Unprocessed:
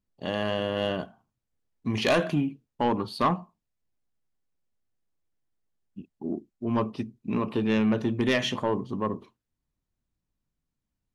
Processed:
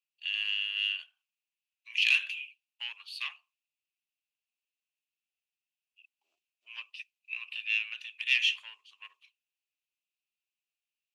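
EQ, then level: ladder high-pass 2.5 kHz, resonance 80%; +6.5 dB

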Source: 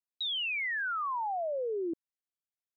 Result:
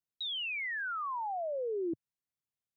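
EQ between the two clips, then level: peaking EQ 120 Hz +14 dB 1.7 oct; -3.5 dB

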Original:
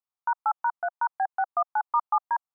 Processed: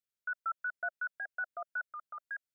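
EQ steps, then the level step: elliptic band-stop 620–1400 Hz, stop band 40 dB; 0.0 dB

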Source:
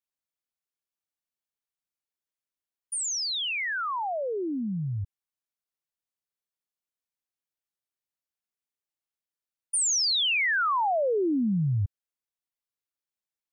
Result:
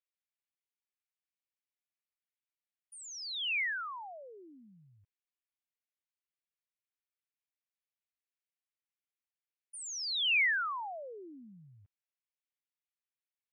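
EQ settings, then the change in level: band-pass filter 2.3 kHz, Q 1.9; -1.5 dB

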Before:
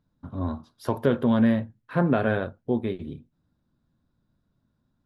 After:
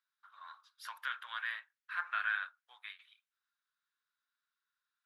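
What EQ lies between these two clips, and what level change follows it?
steep high-pass 1.3 kHz 36 dB/octave; treble shelf 3.8 kHz -8.5 dB; +1.0 dB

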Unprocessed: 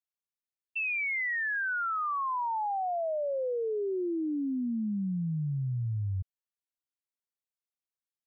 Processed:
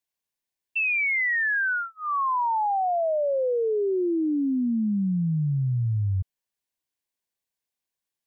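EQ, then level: Butterworth band-stop 1.3 kHz, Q 5.5; +7.0 dB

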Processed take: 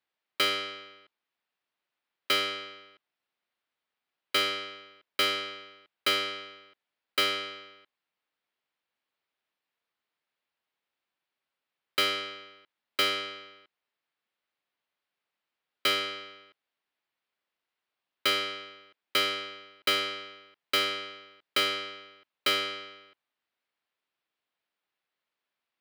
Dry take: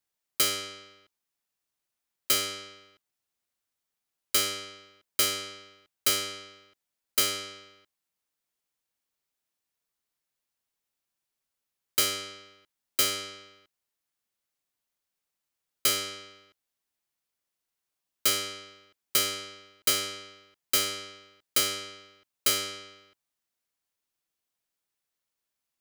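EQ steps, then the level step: high-pass 390 Hz 6 dB/octave; distance through air 420 m; treble shelf 2.9 kHz +10.5 dB; +6.0 dB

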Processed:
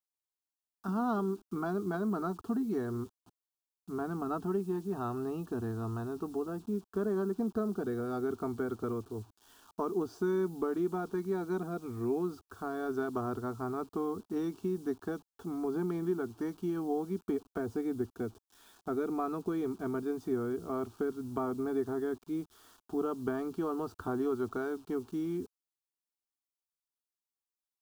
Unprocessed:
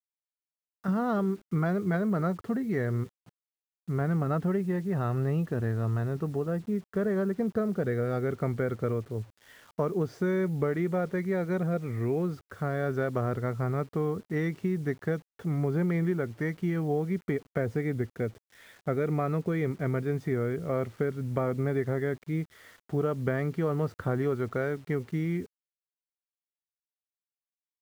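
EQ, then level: static phaser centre 540 Hz, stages 6; 0.0 dB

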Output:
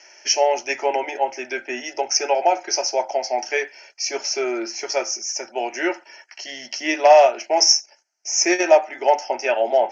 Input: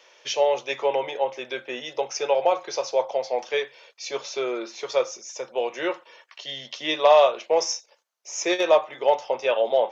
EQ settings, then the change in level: resonant low-pass 5.5 kHz, resonance Q 4.8; static phaser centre 740 Hz, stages 8; +7.0 dB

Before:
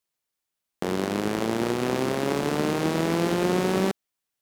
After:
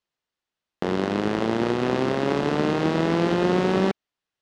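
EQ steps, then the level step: low-pass 4.2 kHz 12 dB/octave; band-stop 2.3 kHz, Q 17; +2.5 dB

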